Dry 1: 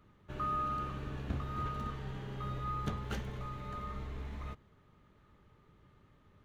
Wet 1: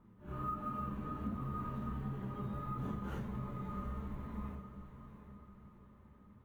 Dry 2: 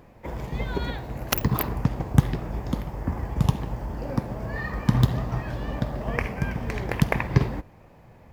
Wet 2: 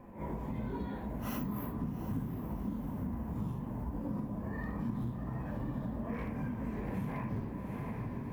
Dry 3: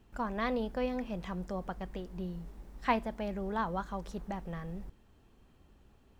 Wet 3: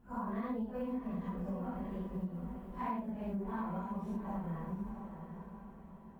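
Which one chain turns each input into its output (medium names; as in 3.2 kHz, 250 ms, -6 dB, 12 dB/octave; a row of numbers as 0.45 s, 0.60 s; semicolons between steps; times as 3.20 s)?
phase randomisation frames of 200 ms; short-mantissa float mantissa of 4-bit; peaking EQ 4.7 kHz -13 dB 2.1 oct; one-sided clip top -23 dBFS; dynamic bell 280 Hz, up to +5 dB, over -44 dBFS, Q 3.1; echo that smears into a reverb 743 ms, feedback 43%, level -11 dB; flange 1.4 Hz, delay 7.4 ms, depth 6.3 ms, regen -57%; small resonant body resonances 210/1000 Hz, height 9 dB, ringing for 40 ms; compression 5:1, threshold -38 dBFS; trim +2.5 dB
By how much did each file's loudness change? -2.5 LU, -11.5 LU, -3.5 LU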